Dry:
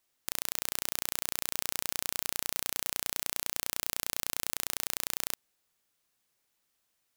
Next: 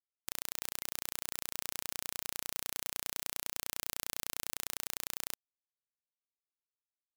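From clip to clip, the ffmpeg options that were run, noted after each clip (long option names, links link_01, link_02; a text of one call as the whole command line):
ffmpeg -i in.wav -af "afftfilt=real='re*gte(hypot(re,im),0.00631)':imag='im*gte(hypot(re,im),0.00631)':win_size=1024:overlap=0.75,volume=-5.5dB" out.wav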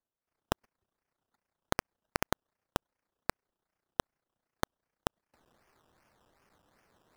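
ffmpeg -i in.wav -af "areverse,acompressor=mode=upward:threshold=-44dB:ratio=2.5,areverse,acrusher=samples=16:mix=1:aa=0.000001:lfo=1:lforange=9.6:lforate=2.6,volume=-1.5dB" out.wav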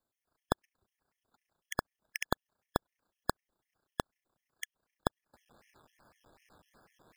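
ffmpeg -i in.wav -af "alimiter=limit=-15dB:level=0:latency=1:release=326,afftfilt=real='re*gt(sin(2*PI*4*pts/sr)*(1-2*mod(floor(b*sr/1024/1700),2)),0)':imag='im*gt(sin(2*PI*4*pts/sr)*(1-2*mod(floor(b*sr/1024/1700),2)),0)':win_size=1024:overlap=0.75,volume=6.5dB" out.wav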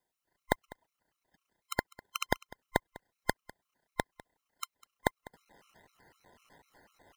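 ffmpeg -i in.wav -af "afftfilt=real='real(if(between(b,1,1008),(2*floor((b-1)/48)+1)*48-b,b),0)':imag='imag(if(between(b,1,1008),(2*floor((b-1)/48)+1)*48-b,b),0)*if(between(b,1,1008),-1,1)':win_size=2048:overlap=0.75,aecho=1:1:200:0.0891,volume=2dB" out.wav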